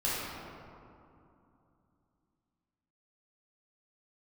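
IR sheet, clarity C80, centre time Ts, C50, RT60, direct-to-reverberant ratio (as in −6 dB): −1.0 dB, 158 ms, −3.5 dB, 2.7 s, −10.0 dB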